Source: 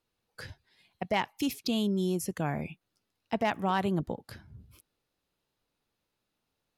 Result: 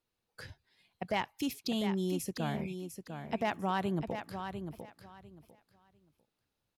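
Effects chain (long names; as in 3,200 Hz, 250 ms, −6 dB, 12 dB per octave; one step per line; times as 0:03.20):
repeating echo 699 ms, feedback 20%, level −8 dB
level −4 dB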